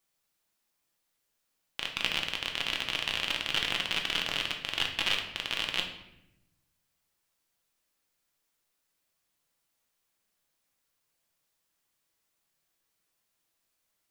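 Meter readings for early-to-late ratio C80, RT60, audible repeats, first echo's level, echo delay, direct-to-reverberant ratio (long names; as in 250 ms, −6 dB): 10.5 dB, 0.85 s, no echo audible, no echo audible, no echo audible, 2.0 dB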